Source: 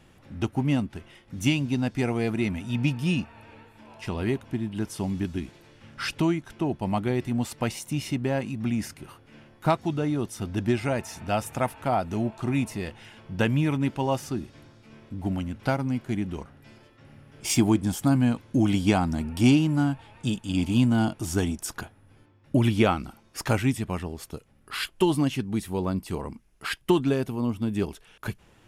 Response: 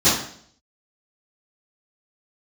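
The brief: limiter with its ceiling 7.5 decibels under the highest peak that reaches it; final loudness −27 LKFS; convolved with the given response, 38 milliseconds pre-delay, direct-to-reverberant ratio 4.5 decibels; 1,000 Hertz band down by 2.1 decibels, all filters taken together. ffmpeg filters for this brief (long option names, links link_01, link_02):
-filter_complex "[0:a]equalizer=frequency=1000:width_type=o:gain=-3,alimiter=limit=-15.5dB:level=0:latency=1,asplit=2[link_01][link_02];[1:a]atrim=start_sample=2205,adelay=38[link_03];[link_02][link_03]afir=irnorm=-1:irlink=0,volume=-24.5dB[link_04];[link_01][link_04]amix=inputs=2:normalize=0,volume=-1.5dB"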